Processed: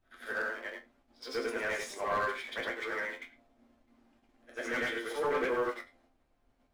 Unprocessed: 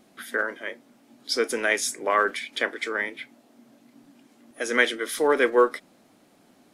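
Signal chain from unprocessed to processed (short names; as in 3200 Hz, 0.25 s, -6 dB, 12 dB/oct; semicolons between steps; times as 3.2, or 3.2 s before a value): short-time reversal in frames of 0.222 s; in parallel at -4 dB: requantised 6-bit, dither none; on the sum: steep high-pass 170 Hz 96 dB/oct; gate -59 dBFS, range -8 dB; resonator bank F2 sus4, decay 0.21 s; overdrive pedal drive 13 dB, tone 1400 Hz, clips at -22.5 dBFS; added noise brown -73 dBFS; on a send: reverse echo 66 ms -22 dB; on the sum: slew limiter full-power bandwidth 51 Hz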